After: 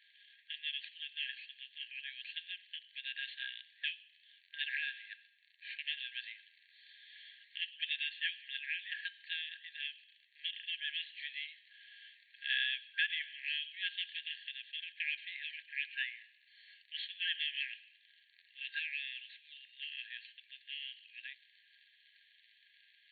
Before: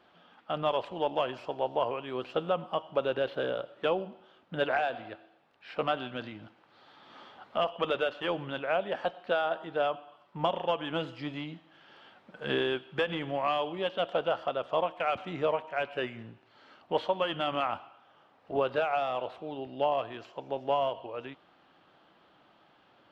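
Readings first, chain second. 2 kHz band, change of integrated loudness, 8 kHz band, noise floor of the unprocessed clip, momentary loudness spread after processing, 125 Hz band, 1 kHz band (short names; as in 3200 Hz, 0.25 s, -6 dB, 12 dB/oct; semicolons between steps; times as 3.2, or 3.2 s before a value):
-0.5 dB, -7.5 dB, n/a, -63 dBFS, 18 LU, under -40 dB, under -40 dB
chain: crackle 69/s -44 dBFS; notch 2900 Hz, Q 28; FFT band-pass 1600–4500 Hz; gain +2.5 dB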